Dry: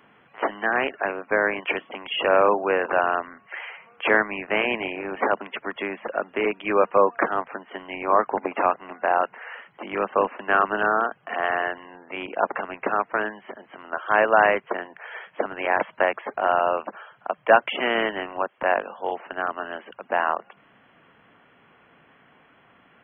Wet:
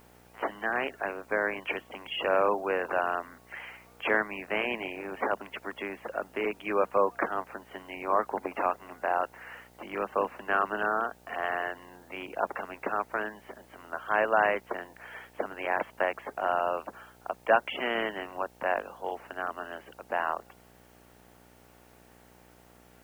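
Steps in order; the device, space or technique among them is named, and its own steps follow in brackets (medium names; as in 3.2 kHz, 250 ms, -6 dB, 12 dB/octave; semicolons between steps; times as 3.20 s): video cassette with head-switching buzz (mains buzz 60 Hz, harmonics 15, -52 dBFS -2 dB/octave; white noise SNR 33 dB); trim -7 dB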